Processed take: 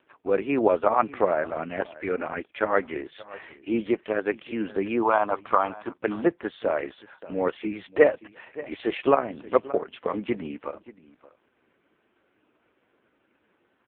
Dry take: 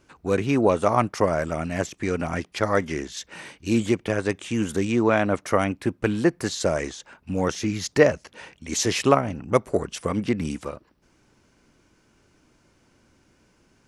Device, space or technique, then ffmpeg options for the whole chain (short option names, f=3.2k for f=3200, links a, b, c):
satellite phone: -filter_complex "[0:a]asplit=3[a][b][c];[a]afade=t=out:st=5.02:d=0.02[d];[b]equalizer=f=125:t=o:w=1:g=-6,equalizer=f=250:t=o:w=1:g=-5,equalizer=f=500:t=o:w=1:g=-6,equalizer=f=1k:t=o:w=1:g=10,equalizer=f=2k:t=o:w=1:g=-10,equalizer=f=4k:t=o:w=1:g=6,equalizer=f=8k:t=o:w=1:g=-4,afade=t=in:st=5.02:d=0.02,afade=t=out:st=5.89:d=0.02[e];[c]afade=t=in:st=5.89:d=0.02[f];[d][e][f]amix=inputs=3:normalize=0,highpass=330,lowpass=3k,aecho=1:1:578:0.112,volume=1.5dB" -ar 8000 -c:a libopencore_amrnb -b:a 4750